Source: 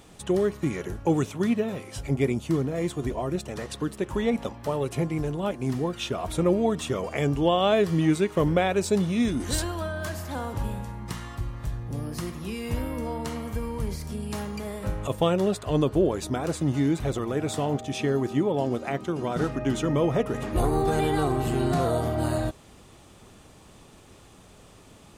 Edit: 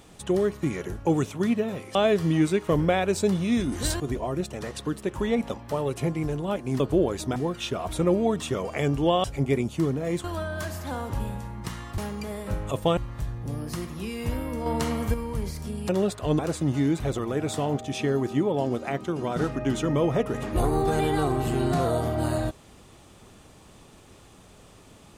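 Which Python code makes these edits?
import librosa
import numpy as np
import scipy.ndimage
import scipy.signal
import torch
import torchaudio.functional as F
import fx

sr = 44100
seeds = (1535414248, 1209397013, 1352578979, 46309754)

y = fx.edit(x, sr, fx.swap(start_s=1.95, length_s=1.0, other_s=7.63, other_length_s=2.05),
    fx.clip_gain(start_s=13.11, length_s=0.48, db=5.5),
    fx.move(start_s=14.34, length_s=0.99, to_s=11.42),
    fx.move(start_s=15.83, length_s=0.56, to_s=5.75), tone=tone)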